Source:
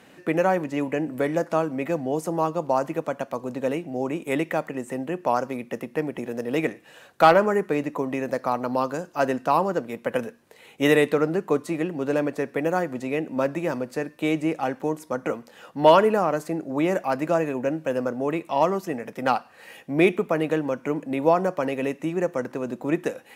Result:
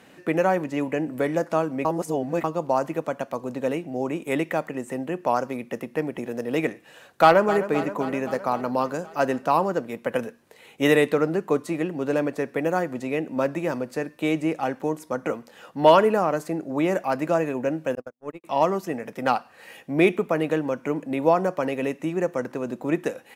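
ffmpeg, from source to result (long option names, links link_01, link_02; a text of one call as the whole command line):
ffmpeg -i in.wav -filter_complex "[0:a]asplit=2[link_01][link_02];[link_02]afade=type=in:start_time=7.21:duration=0.01,afade=type=out:start_time=7.69:duration=0.01,aecho=0:1:260|520|780|1040|1300|1560|1820|2080|2340:0.223872|0.15671|0.109697|0.0767881|0.0537517|0.0376262|0.0263383|0.0184368|0.0129058[link_03];[link_01][link_03]amix=inputs=2:normalize=0,asettb=1/sr,asplit=3[link_04][link_05][link_06];[link_04]atrim=end=17.954[link_07];[link_05]atrim=start=17.95:end=18.44,asetpts=PTS-STARTPTS,afade=type=in:duration=0.004:curve=qsin,afade=type=out:start_time=0.486:duration=0.004:curve=qsin,agate=range=-60dB:threshold=-23dB:ratio=16:release=100:detection=peak[link_08];[link_06]atrim=start=18.436[link_09];[link_07][link_08]acrossfade=duration=0.004:curve1=hsin:curve2=qsin[link_10];[link_10][link_09]acrossfade=duration=0.004:curve1=qsin:curve2=hsin,asplit=3[link_11][link_12][link_13];[link_11]atrim=end=1.852[link_14];[link_12]atrim=start=1.848:end=2.442,asetpts=PTS-STARTPTS,areverse[link_15];[link_13]atrim=start=2.438[link_16];[link_14][link_15]acrossfade=duration=0.004:curve1=hsin:curve2=hsin[link_17];[link_17][link_16]acrossfade=duration=0.004:curve1=hsin:curve2=hsin" out.wav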